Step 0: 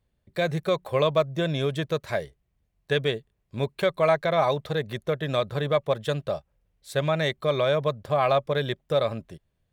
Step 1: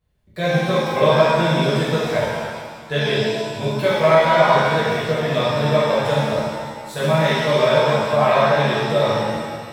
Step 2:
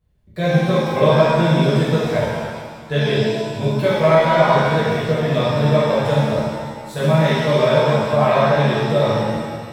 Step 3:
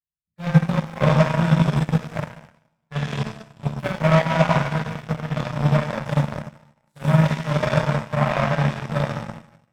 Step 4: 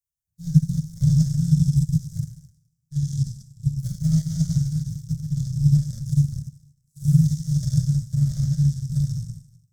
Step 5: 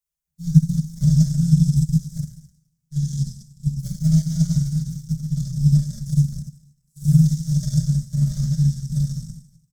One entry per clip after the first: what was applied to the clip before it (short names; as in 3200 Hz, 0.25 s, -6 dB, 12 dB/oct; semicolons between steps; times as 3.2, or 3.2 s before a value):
shimmer reverb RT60 1.7 s, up +7 st, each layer -8 dB, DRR -10 dB; gain -3 dB
low shelf 420 Hz +7.5 dB; gain -2 dB
added harmonics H 7 -17 dB, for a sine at -1 dBFS; fifteen-band EQ 160 Hz +8 dB, 400 Hz -10 dB, 4000 Hz -6 dB; gain -3.5 dB
elliptic band-stop 130–6000 Hz, stop band 40 dB; gain +6.5 dB
comb 4.9 ms, depth 97%